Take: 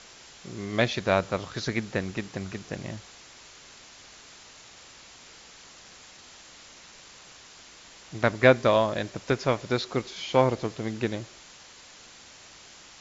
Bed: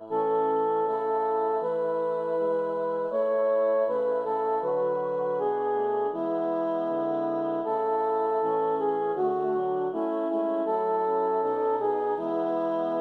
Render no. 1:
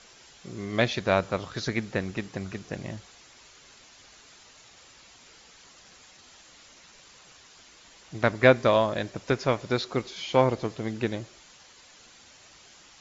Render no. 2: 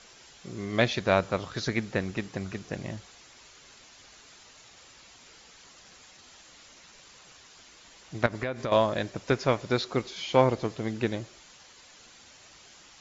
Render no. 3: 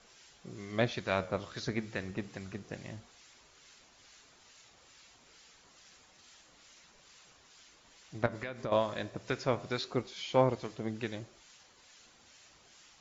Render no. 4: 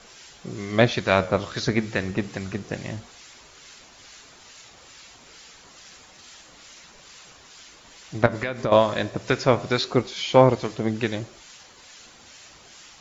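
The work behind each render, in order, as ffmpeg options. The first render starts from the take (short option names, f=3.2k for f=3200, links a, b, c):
-af "afftdn=nr=6:nf=-50"
-filter_complex "[0:a]asettb=1/sr,asplit=3[a][b][c];[a]atrim=end=8.264[d];[b]atrim=start=8.26:end=8.72,asetpts=PTS-STARTPTS,afade=t=in:d=0.004:c=qsin,afade=t=out:st=0.456:d=0.004:c=qsin,acompressor=threshold=-27dB:ratio=10:attack=3.2:release=140:knee=1:detection=peak[e];[c]atrim=start=8.716[f];[d][e]acrossfade=d=0.004:c1=hsin:c2=qsin[g];[g][f]acrossfade=d=0.004:c1=qsin:c2=hsin"
-filter_complex "[0:a]acrossover=split=1300[a][b];[a]aeval=exprs='val(0)*(1-0.5/2+0.5/2*cos(2*PI*2.3*n/s))':c=same[c];[b]aeval=exprs='val(0)*(1-0.5/2-0.5/2*cos(2*PI*2.3*n/s))':c=same[d];[c][d]amix=inputs=2:normalize=0,flanger=delay=4.6:depth=8.9:regen=-89:speed=0.28:shape=sinusoidal"
-af "volume=12dB,alimiter=limit=-2dB:level=0:latency=1"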